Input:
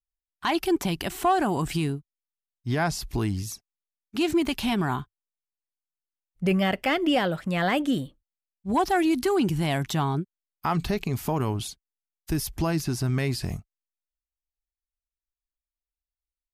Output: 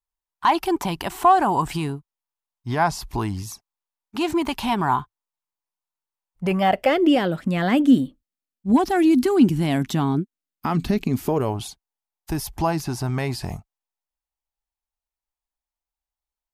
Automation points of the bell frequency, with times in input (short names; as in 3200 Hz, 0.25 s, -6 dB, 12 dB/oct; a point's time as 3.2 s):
bell +12.5 dB 0.75 oct
6.58 s 940 Hz
7.32 s 250 Hz
11.15 s 250 Hz
11.59 s 850 Hz